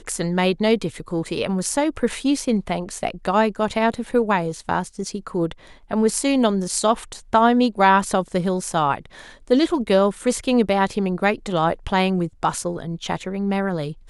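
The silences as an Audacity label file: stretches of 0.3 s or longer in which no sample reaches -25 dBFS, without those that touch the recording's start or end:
5.520000	5.910000	silence
8.980000	9.500000	silence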